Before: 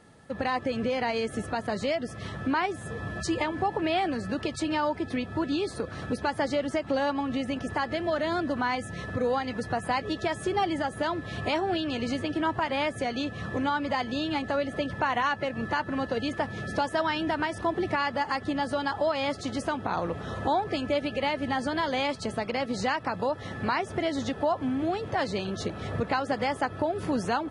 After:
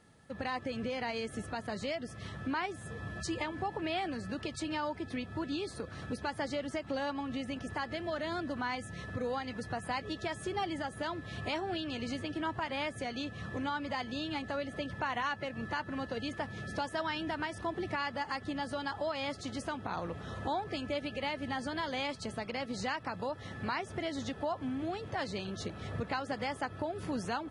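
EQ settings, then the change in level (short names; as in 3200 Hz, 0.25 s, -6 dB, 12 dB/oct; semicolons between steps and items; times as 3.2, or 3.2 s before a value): bell 550 Hz -4 dB 2.9 oct; -5.0 dB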